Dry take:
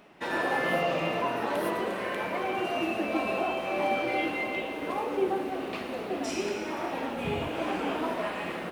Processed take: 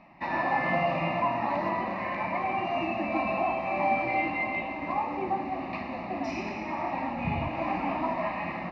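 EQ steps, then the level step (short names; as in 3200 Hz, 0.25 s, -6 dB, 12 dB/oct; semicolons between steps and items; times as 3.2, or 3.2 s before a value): air absorption 290 m; fixed phaser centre 2200 Hz, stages 8; +6.0 dB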